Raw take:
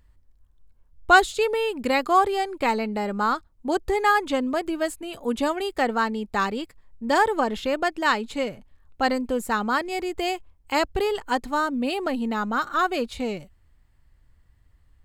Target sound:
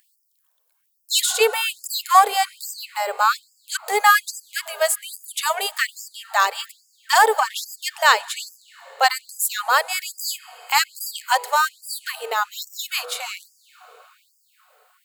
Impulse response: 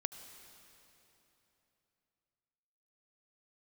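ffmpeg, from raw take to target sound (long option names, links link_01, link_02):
-filter_complex "[0:a]aemphasis=mode=production:type=50fm,bandreject=frequency=163.6:width_type=h:width=4,bandreject=frequency=327.2:width_type=h:width=4,bandreject=frequency=490.8:width_type=h:width=4,bandreject=frequency=654.4:width_type=h:width=4,bandreject=frequency=818:width_type=h:width=4,bandreject=frequency=981.6:width_type=h:width=4,aeval=exprs='0.668*(cos(1*acos(clip(val(0)/0.668,-1,1)))-cos(1*PI/2))+0.0075*(cos(3*acos(clip(val(0)/0.668,-1,1)))-cos(3*PI/2))+0.0335*(cos(4*acos(clip(val(0)/0.668,-1,1)))-cos(4*PI/2))':channel_layout=same,asplit=2[link_01][link_02];[1:a]atrim=start_sample=2205,asetrate=26460,aresample=44100,highshelf=frequency=7500:gain=-2.5[link_03];[link_02][link_03]afir=irnorm=-1:irlink=0,volume=-14dB[link_04];[link_01][link_04]amix=inputs=2:normalize=0,afftfilt=real='re*gte(b*sr/1024,400*pow(4800/400,0.5+0.5*sin(2*PI*1.2*pts/sr)))':imag='im*gte(b*sr/1024,400*pow(4800/400,0.5+0.5*sin(2*PI*1.2*pts/sr)))':win_size=1024:overlap=0.75,volume=5dB"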